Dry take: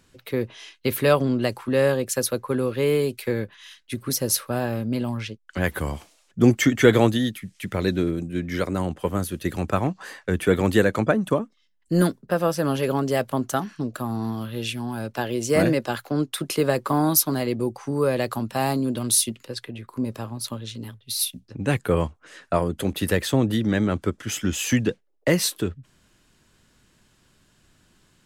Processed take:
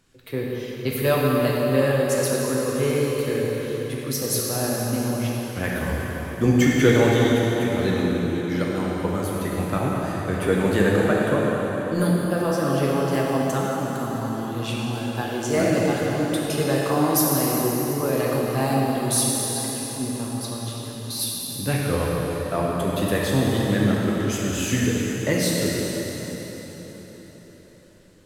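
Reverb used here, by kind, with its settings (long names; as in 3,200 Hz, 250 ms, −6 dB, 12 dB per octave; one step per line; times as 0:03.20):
dense smooth reverb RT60 4.9 s, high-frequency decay 0.8×, DRR −4.5 dB
level −4.5 dB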